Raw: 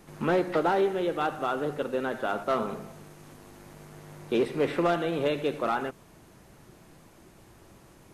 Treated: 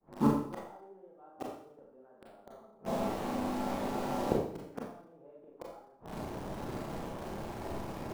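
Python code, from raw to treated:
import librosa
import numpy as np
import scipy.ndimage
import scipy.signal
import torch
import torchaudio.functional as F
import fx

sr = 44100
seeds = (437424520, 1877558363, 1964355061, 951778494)

p1 = fx.fade_in_head(x, sr, length_s=0.58)
p2 = fx.lowpass_res(p1, sr, hz=840.0, q=1.6)
p3 = fx.gate_flip(p2, sr, shuts_db=-25.0, range_db=-40)
p4 = fx.quant_dither(p3, sr, seeds[0], bits=8, dither='none')
p5 = p3 + F.gain(torch.from_numpy(p4), -5.5).numpy()
p6 = fx.hum_notches(p5, sr, base_hz=50, count=3)
p7 = fx.rev_schroeder(p6, sr, rt60_s=0.6, comb_ms=28, drr_db=-2.5)
y = F.gain(torch.from_numpy(p7), 6.5).numpy()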